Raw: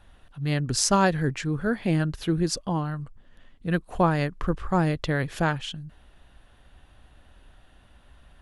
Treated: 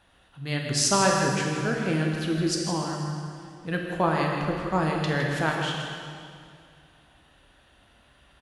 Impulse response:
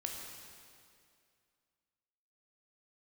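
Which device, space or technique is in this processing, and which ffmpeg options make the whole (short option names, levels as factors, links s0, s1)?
PA in a hall: -filter_complex "[0:a]highpass=f=170:p=1,equalizer=f=3600:t=o:w=2.4:g=3,aecho=1:1:160:0.299[s0];[1:a]atrim=start_sample=2205[s1];[s0][s1]afir=irnorm=-1:irlink=0"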